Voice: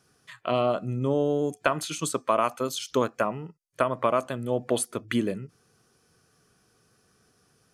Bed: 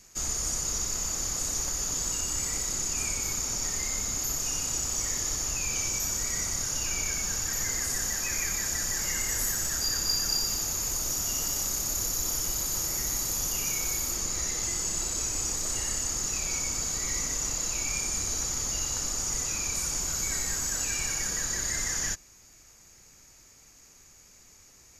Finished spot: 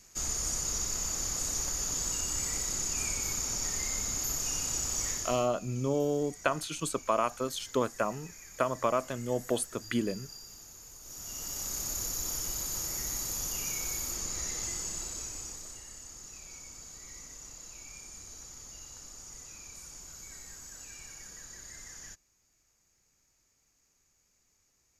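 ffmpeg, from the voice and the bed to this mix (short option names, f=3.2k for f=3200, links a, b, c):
-filter_complex "[0:a]adelay=4800,volume=-4.5dB[a];[1:a]volume=12.5dB,afade=t=out:st=5.06:d=0.44:silence=0.133352,afade=t=in:st=11.01:d=0.8:silence=0.177828,afade=t=out:st=14.63:d=1.19:silence=0.251189[b];[a][b]amix=inputs=2:normalize=0"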